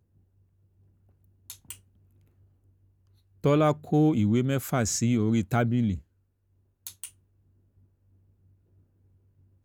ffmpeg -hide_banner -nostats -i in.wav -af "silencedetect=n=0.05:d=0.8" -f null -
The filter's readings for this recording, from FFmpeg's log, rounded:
silence_start: 0.00
silence_end: 1.50 | silence_duration: 1.50
silence_start: 1.71
silence_end: 3.45 | silence_duration: 1.74
silence_start: 5.95
silence_end: 6.87 | silence_duration: 0.92
silence_start: 7.04
silence_end: 9.65 | silence_duration: 2.60